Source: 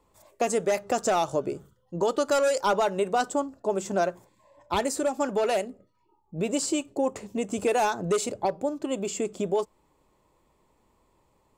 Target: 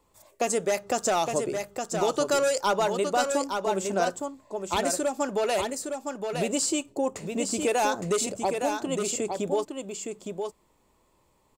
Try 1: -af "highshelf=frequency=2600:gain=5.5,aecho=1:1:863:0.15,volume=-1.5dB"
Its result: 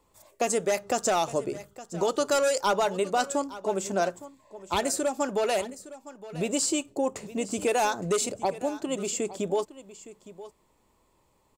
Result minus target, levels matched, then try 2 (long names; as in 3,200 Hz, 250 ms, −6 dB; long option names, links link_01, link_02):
echo-to-direct −11 dB
-af "highshelf=frequency=2600:gain=5.5,aecho=1:1:863:0.531,volume=-1.5dB"